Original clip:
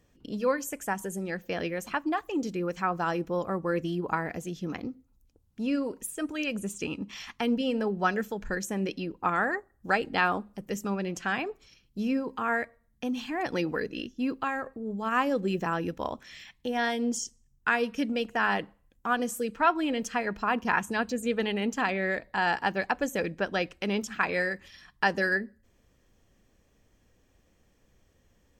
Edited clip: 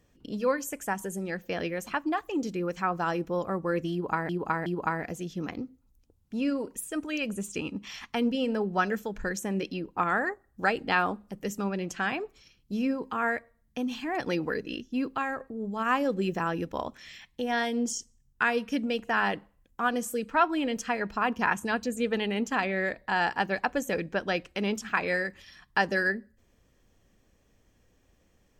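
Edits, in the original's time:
3.92–4.29 loop, 3 plays

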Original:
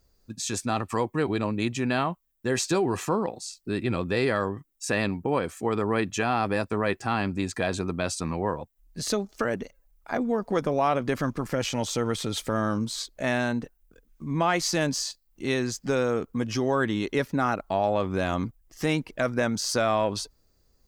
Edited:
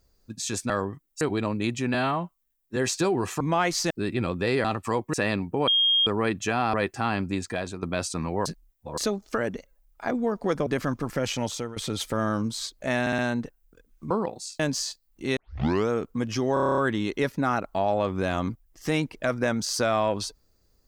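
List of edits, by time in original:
0.7–1.19 swap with 4.34–4.85
1.92–2.47 stretch 1.5×
3.11–3.6 swap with 14.29–14.79
5.39–5.78 bleep 3240 Hz -18 dBFS
6.45–6.8 cut
7.41–7.89 fade out, to -9 dB
8.52–9.04 reverse
10.73–11.03 cut
11.7–12.13 fade out equal-power, to -18.5 dB
13.37 stutter 0.06 s, 4 plays
15.56 tape start 0.53 s
16.73 stutter 0.03 s, 9 plays

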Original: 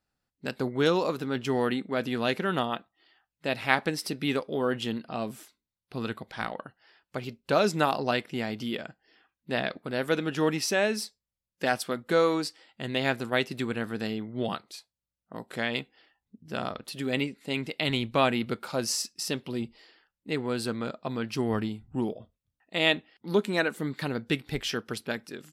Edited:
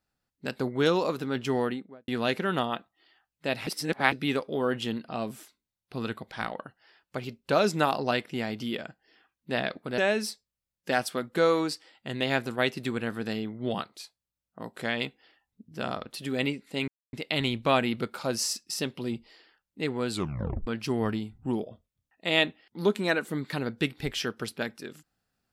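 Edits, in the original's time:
1.51–2.08 studio fade out
3.67–4.12 reverse
9.98–10.72 cut
17.62 insert silence 0.25 s
20.59 tape stop 0.57 s

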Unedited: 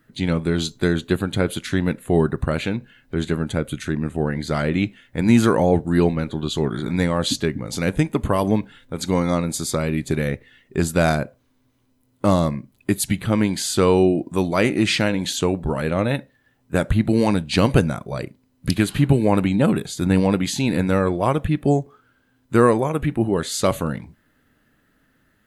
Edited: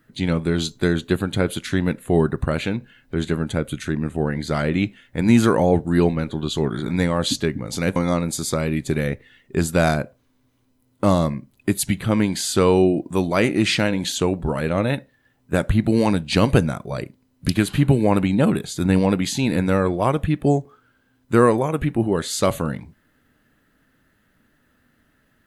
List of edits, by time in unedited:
7.96–9.17 cut

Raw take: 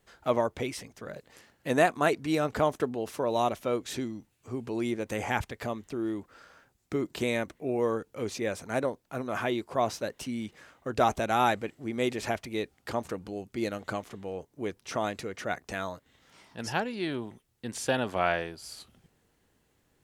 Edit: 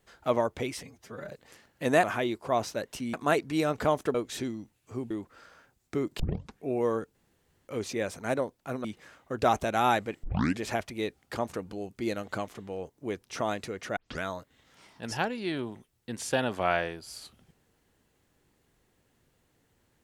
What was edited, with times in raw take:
0.83–1.14 stretch 1.5×
2.89–3.71 cut
4.67–6.09 cut
7.18 tape start 0.45 s
8.13 insert room tone 0.53 s
9.3–10.4 move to 1.88
11.79 tape start 0.37 s
15.52 tape start 0.26 s

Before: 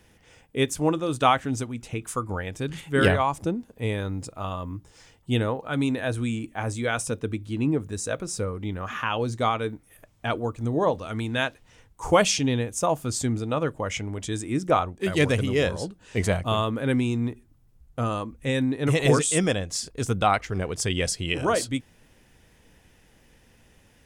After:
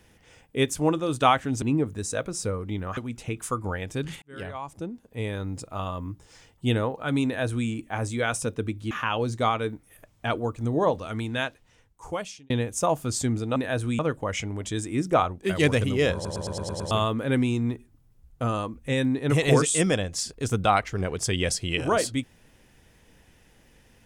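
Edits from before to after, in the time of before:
2.87–4.37 fade in
5.9–6.33 copy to 13.56
7.56–8.91 move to 1.62
11.02–12.5 fade out
15.71 stutter in place 0.11 s, 7 plays

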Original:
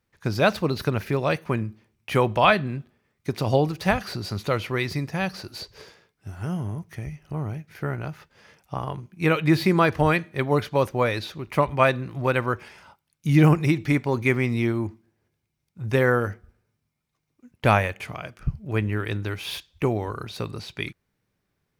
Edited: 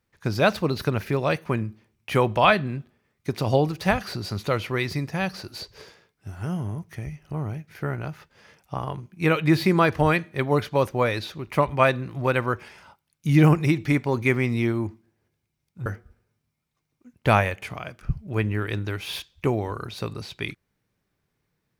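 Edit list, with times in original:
15.86–16.24 cut

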